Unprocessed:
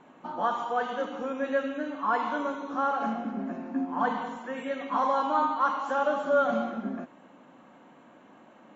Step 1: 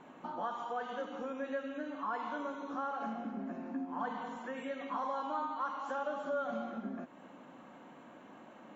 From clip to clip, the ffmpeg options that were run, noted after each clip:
ffmpeg -i in.wav -af "acompressor=threshold=-43dB:ratio=2" out.wav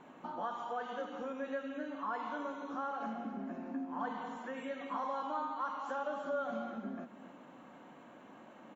ffmpeg -i in.wav -af "aecho=1:1:277:0.188,volume=-1dB" out.wav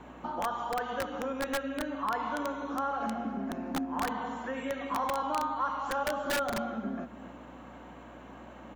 ffmpeg -i in.wav -filter_complex "[0:a]aeval=exprs='val(0)+0.000794*(sin(2*PI*60*n/s)+sin(2*PI*2*60*n/s)/2+sin(2*PI*3*60*n/s)/3+sin(2*PI*4*60*n/s)/4+sin(2*PI*5*60*n/s)/5)':channel_layout=same,acrossover=split=980[link_01][link_02];[link_01]aeval=exprs='(mod(42.2*val(0)+1,2)-1)/42.2':channel_layout=same[link_03];[link_03][link_02]amix=inputs=2:normalize=0,volume=6.5dB" out.wav

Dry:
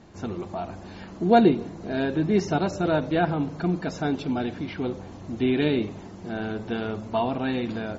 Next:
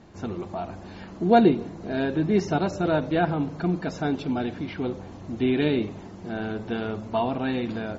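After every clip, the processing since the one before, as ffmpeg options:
ffmpeg -i in.wav -af "highshelf=frequency=6500:gain=-4.5" out.wav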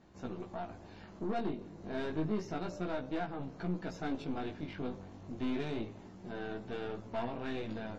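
ffmpeg -i in.wav -af "alimiter=limit=-15.5dB:level=0:latency=1:release=389,aeval=exprs='(tanh(15.8*val(0)+0.65)-tanh(0.65))/15.8':channel_layout=same,flanger=delay=15.5:depth=4.9:speed=0.3,volume=-4dB" out.wav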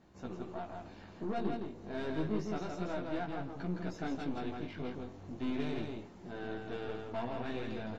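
ffmpeg -i in.wav -af "aecho=1:1:164:0.631,volume=-1.5dB" out.wav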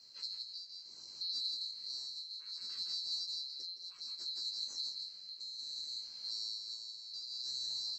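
ffmpeg -i in.wav -af "afftfilt=real='real(if(lt(b,736),b+184*(1-2*mod(floor(b/184),2)),b),0)':imag='imag(if(lt(b,736),b+184*(1-2*mod(floor(b/184),2)),b),0)':win_size=2048:overlap=0.75,acompressor=threshold=-42dB:ratio=4,tremolo=f=0.64:d=0.61,volume=5dB" out.wav

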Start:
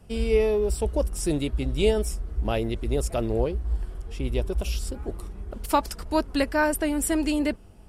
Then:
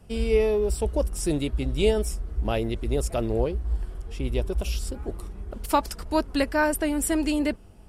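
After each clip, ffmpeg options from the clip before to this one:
ffmpeg -i in.wav -af anull out.wav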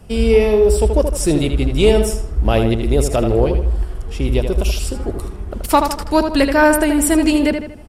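ffmpeg -i in.wav -filter_complex "[0:a]acontrast=83,asplit=2[link_01][link_02];[link_02]adelay=79,lowpass=frequency=4300:poles=1,volume=-6.5dB,asplit=2[link_03][link_04];[link_04]adelay=79,lowpass=frequency=4300:poles=1,volume=0.44,asplit=2[link_05][link_06];[link_06]adelay=79,lowpass=frequency=4300:poles=1,volume=0.44,asplit=2[link_07][link_08];[link_08]adelay=79,lowpass=frequency=4300:poles=1,volume=0.44,asplit=2[link_09][link_10];[link_10]adelay=79,lowpass=frequency=4300:poles=1,volume=0.44[link_11];[link_01][link_03][link_05][link_07][link_09][link_11]amix=inputs=6:normalize=0,volume=2.5dB" out.wav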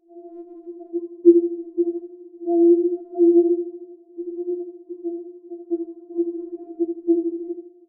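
ffmpeg -i in.wav -af "asuperpass=centerf=350:order=8:qfactor=1.1,afftfilt=real='re*4*eq(mod(b,16),0)':imag='im*4*eq(mod(b,16),0)':win_size=2048:overlap=0.75" out.wav

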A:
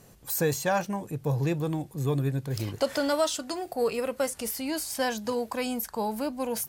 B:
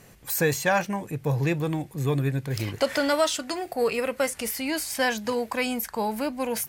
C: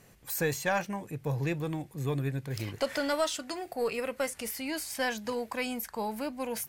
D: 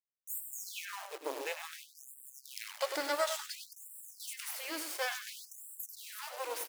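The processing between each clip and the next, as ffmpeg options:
ffmpeg -i in.wav -af "equalizer=frequency=2100:width=1.5:gain=8,volume=2dB" out.wav
ffmpeg -i in.wav -af "aeval=exprs='0.335*(cos(1*acos(clip(val(0)/0.335,-1,1)))-cos(1*PI/2))+0.0237*(cos(2*acos(clip(val(0)/0.335,-1,1)))-cos(2*PI/2))':channel_layout=same,volume=-6.5dB" out.wav
ffmpeg -i in.wav -af "acrusher=bits=4:dc=4:mix=0:aa=0.000001,aecho=1:1:98|196|294|392:0.376|0.139|0.0515|0.019,afftfilt=real='re*gte(b*sr/1024,270*pow(7500/270,0.5+0.5*sin(2*PI*0.57*pts/sr)))':imag='im*gte(b*sr/1024,270*pow(7500/270,0.5+0.5*sin(2*PI*0.57*pts/sr)))':win_size=1024:overlap=0.75" out.wav

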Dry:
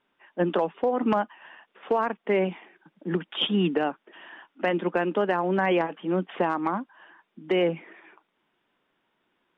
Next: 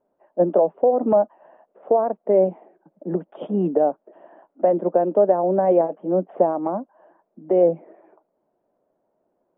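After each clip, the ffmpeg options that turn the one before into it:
ffmpeg -i in.wav -af "lowpass=frequency=620:width_type=q:width=4.4" out.wav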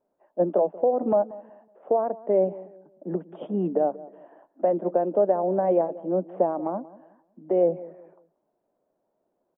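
ffmpeg -i in.wav -filter_complex "[0:a]asplit=2[link_01][link_02];[link_02]adelay=184,lowpass=frequency=970:poles=1,volume=-17.5dB,asplit=2[link_03][link_04];[link_04]adelay=184,lowpass=frequency=970:poles=1,volume=0.34,asplit=2[link_05][link_06];[link_06]adelay=184,lowpass=frequency=970:poles=1,volume=0.34[link_07];[link_01][link_03][link_05][link_07]amix=inputs=4:normalize=0,volume=-4.5dB" out.wav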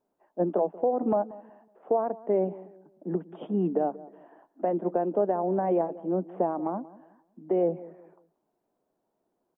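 ffmpeg -i in.wav -af "equalizer=frequency=570:width_type=o:width=0.39:gain=-8" out.wav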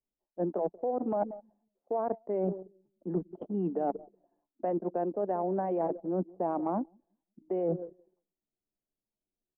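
ffmpeg -i in.wav -af "anlmdn=3.98,areverse,acompressor=threshold=-33dB:ratio=16,areverse,volume=6dB" out.wav

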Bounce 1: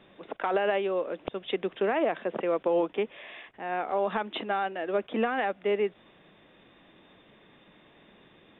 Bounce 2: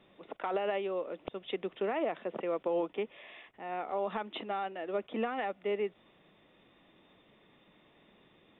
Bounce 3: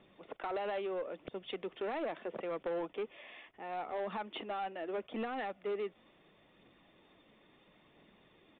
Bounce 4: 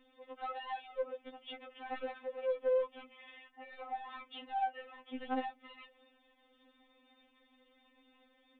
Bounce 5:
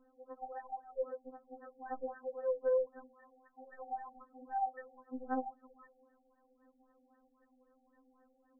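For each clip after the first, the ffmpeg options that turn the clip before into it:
ffmpeg -i in.wav -af "bandreject=frequency=1600:width=10,volume=-6dB" out.wav
ffmpeg -i in.wav -af "aphaser=in_gain=1:out_gain=1:delay=4.1:decay=0.26:speed=0.75:type=triangular,aresample=8000,asoftclip=type=tanh:threshold=-30dB,aresample=44100,volume=-1.5dB" out.wav
ffmpeg -i in.wav -af "bandreject=frequency=60:width_type=h:width=6,bandreject=frequency=120:width_type=h:width=6,bandreject=frequency=180:width_type=h:width=6,bandreject=frequency=240:width_type=h:width=6,afftfilt=real='re*3.46*eq(mod(b,12),0)':imag='im*3.46*eq(mod(b,12),0)':win_size=2048:overlap=0.75" out.wav
ffmpeg -i in.wav -af "afftfilt=real='re*lt(b*sr/1024,770*pow(1900/770,0.5+0.5*sin(2*PI*3.8*pts/sr)))':imag='im*lt(b*sr/1024,770*pow(1900/770,0.5+0.5*sin(2*PI*3.8*pts/sr)))':win_size=1024:overlap=0.75" out.wav

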